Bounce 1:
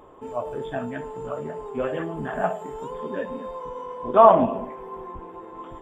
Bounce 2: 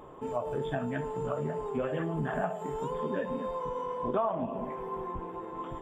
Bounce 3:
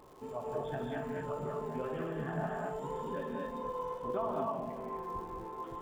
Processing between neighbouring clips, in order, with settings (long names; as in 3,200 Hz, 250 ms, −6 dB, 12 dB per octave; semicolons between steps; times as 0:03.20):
parametric band 150 Hz +7 dB 0.55 octaves; downward compressor 6 to 1, threshold −28 dBFS, peak gain reduction 19 dB
reverb whose tail is shaped and stops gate 270 ms rising, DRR −1 dB; surface crackle 270 per second −43 dBFS; level −8 dB